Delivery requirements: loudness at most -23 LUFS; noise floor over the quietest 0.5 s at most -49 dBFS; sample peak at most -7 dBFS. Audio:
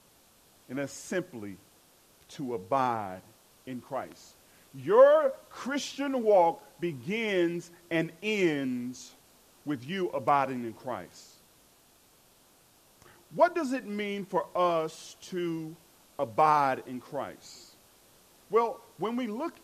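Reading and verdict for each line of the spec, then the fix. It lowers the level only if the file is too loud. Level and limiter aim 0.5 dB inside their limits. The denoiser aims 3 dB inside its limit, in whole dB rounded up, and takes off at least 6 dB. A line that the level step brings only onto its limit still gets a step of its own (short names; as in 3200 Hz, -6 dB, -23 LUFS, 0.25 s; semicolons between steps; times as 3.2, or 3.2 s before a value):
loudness -29.5 LUFS: OK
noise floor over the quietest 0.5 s -62 dBFS: OK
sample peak -9.0 dBFS: OK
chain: none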